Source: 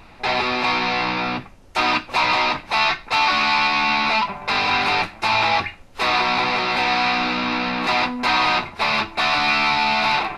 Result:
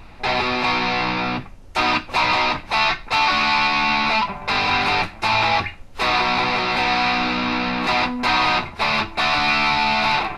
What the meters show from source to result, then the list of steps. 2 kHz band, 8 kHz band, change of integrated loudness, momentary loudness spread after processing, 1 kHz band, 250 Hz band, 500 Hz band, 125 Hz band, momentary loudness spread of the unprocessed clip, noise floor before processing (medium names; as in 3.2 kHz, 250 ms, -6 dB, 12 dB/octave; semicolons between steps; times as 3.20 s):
0.0 dB, 0.0 dB, 0.0 dB, 5 LU, 0.0 dB, +1.5 dB, +0.5 dB, +3.5 dB, 5 LU, -45 dBFS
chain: bass shelf 120 Hz +8 dB